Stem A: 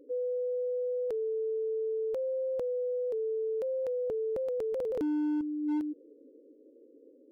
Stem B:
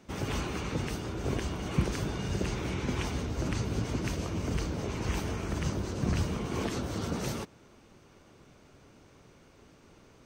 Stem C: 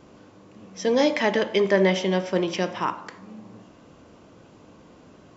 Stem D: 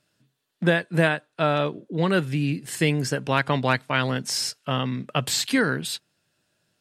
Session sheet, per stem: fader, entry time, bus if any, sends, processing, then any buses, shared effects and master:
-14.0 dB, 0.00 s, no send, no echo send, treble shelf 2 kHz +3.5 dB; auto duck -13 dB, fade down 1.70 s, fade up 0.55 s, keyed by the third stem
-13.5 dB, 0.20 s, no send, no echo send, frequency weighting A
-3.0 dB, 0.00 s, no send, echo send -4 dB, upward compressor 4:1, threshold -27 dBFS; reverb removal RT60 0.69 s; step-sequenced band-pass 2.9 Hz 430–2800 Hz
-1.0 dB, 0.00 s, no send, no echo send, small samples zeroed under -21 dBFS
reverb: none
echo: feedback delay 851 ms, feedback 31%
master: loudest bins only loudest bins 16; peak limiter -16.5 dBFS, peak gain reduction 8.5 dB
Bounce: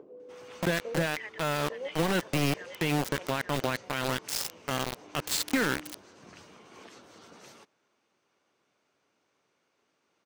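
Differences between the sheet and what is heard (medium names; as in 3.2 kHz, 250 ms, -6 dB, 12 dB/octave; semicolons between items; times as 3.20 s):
stem C -3.0 dB -> -9.5 dB; master: missing loudest bins only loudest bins 16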